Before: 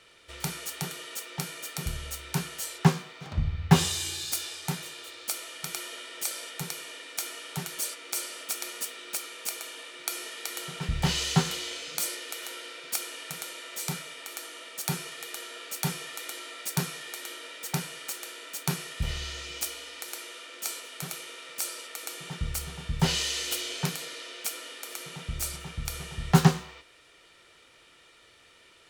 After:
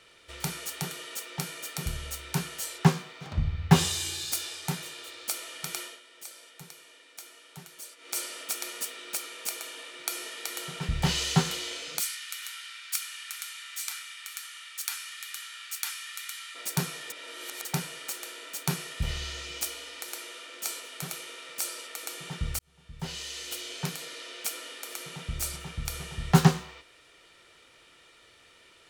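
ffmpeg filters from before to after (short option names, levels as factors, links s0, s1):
-filter_complex "[0:a]asplit=3[s0][s1][s2];[s0]afade=t=out:st=11.99:d=0.02[s3];[s1]highpass=f=1300:w=0.5412,highpass=f=1300:w=1.3066,afade=t=in:st=11.99:d=0.02,afade=t=out:st=16.54:d=0.02[s4];[s2]afade=t=in:st=16.54:d=0.02[s5];[s3][s4][s5]amix=inputs=3:normalize=0,asplit=6[s6][s7][s8][s9][s10][s11];[s6]atrim=end=6,asetpts=PTS-STARTPTS,afade=t=out:st=5.8:d=0.2:silence=0.251189[s12];[s7]atrim=start=6:end=7.97,asetpts=PTS-STARTPTS,volume=0.251[s13];[s8]atrim=start=7.97:end=17.102,asetpts=PTS-STARTPTS,afade=t=in:d=0.2:silence=0.251189[s14];[s9]atrim=start=17.098:end=17.652,asetpts=PTS-STARTPTS,areverse[s15];[s10]atrim=start=17.648:end=22.59,asetpts=PTS-STARTPTS,afade=t=out:st=4.938:d=0.004:c=hsin[s16];[s11]atrim=start=22.59,asetpts=PTS-STARTPTS,afade=t=in:d=1.83[s17];[s12][s13][s14]concat=n=3:v=0:a=1[s18];[s18][s15]acrossfade=d=0.004:c1=hsin:c2=hsin[s19];[s16][s17]concat=n=2:v=0:a=1[s20];[s19][s20]acrossfade=d=0.004:c1=hsin:c2=hsin"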